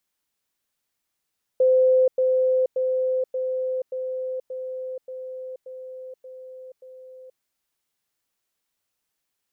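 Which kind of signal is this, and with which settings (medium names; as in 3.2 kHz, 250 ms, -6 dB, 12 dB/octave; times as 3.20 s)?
level ladder 515 Hz -14 dBFS, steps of -3 dB, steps 10, 0.48 s 0.10 s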